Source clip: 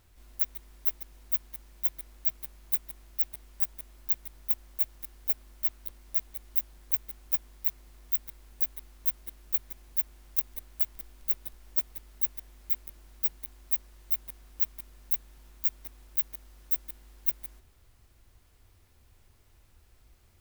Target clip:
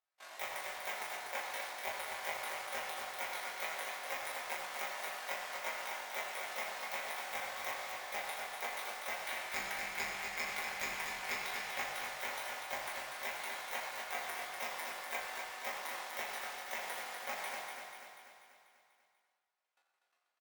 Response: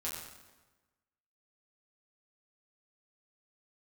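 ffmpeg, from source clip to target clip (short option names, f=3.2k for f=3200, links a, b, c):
-filter_complex "[0:a]agate=range=-40dB:threshold=-52dB:ratio=16:detection=peak,highpass=f=630:w=0.5412,highpass=f=630:w=1.3066,aemphasis=mode=reproduction:type=50fm,acrossover=split=3200[a][b];[b]acompressor=threshold=-55dB:ratio=4:attack=1:release=60[c];[a][c]amix=inputs=2:normalize=0,asettb=1/sr,asplit=3[d][e][f];[d]atrim=end=9.254[g];[e]atrim=start=9.25:end=11.79,asetpts=PTS-STARTPTS,afade=t=in:d=0.004:c=qsin,afade=t=out:st=2.536:d=0.004:c=qsin,equalizer=f=2.3k:t=o:w=0.64:g=6.5[h];[f]atrim=start=11.786[i];[g][h]acrossfade=d=0.004:c1=hsin:c2=qsin[j];[j][i]acrossfade=d=0.004:c1=qsin:c2=hsin,acontrast=68,aeval=exprs='0.0299*sin(PI/2*2.82*val(0)/0.0299)':c=same,tremolo=f=48:d=0.974,aecho=1:1:244|488|732|976|1220|1464|1708:0.531|0.292|0.161|0.0883|0.0486|0.0267|0.0147[k];[1:a]atrim=start_sample=2205[l];[k][l]afir=irnorm=-1:irlink=0,volume=4.5dB"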